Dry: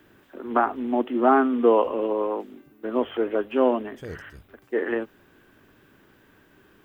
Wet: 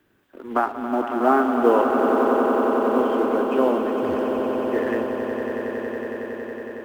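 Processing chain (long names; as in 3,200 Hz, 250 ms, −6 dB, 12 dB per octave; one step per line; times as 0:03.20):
mu-law and A-law mismatch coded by A
echo that builds up and dies away 92 ms, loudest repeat 8, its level −9.5 dB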